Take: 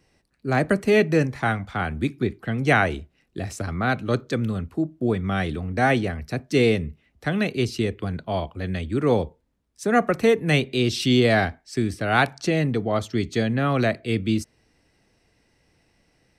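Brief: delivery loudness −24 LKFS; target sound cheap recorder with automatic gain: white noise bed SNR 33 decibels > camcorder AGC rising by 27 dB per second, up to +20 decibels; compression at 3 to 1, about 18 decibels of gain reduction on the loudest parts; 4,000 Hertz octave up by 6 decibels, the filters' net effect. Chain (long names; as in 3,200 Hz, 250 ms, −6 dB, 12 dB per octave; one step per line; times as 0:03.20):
parametric band 4,000 Hz +7.5 dB
downward compressor 3 to 1, threshold −39 dBFS
white noise bed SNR 33 dB
camcorder AGC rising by 27 dB per second, up to +20 dB
level +13.5 dB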